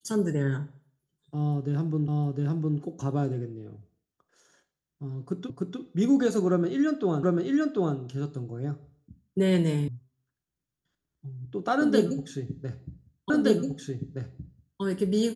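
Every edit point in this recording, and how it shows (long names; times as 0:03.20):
0:02.08: the same again, the last 0.71 s
0:05.50: the same again, the last 0.3 s
0:07.23: the same again, the last 0.74 s
0:09.88: cut off before it has died away
0:13.30: the same again, the last 1.52 s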